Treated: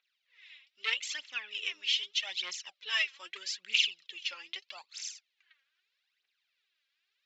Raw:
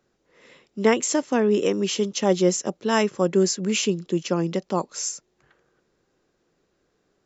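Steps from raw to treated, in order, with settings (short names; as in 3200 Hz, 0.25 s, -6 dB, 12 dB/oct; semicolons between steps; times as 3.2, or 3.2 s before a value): phaser 0.8 Hz, delay 3.8 ms, feedback 70%; hard clip -9.5 dBFS, distortion -13 dB; Butterworth band-pass 3000 Hz, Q 1.5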